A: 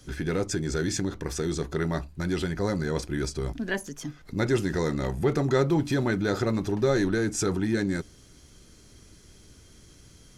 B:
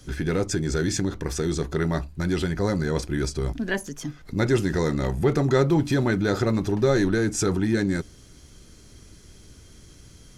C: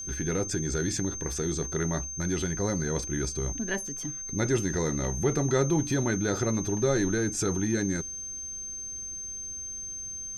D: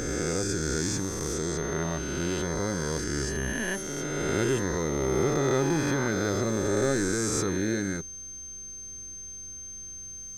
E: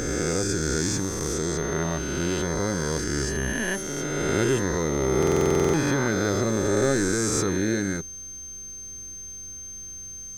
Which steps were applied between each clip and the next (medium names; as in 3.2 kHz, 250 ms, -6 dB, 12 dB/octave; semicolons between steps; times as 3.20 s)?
bass shelf 140 Hz +3 dB; trim +2.5 dB
whistle 6.3 kHz -30 dBFS; trim -5 dB
reverse spectral sustain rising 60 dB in 2.71 s; companded quantiser 8-bit; trim -3.5 dB
in parallel at -6 dB: crossover distortion -48.5 dBFS; on the sum: buffer glitch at 5.18 s, samples 2048, times 11